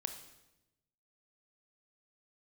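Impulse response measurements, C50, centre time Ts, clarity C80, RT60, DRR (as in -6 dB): 9.0 dB, 15 ms, 11.5 dB, 0.95 s, 7.0 dB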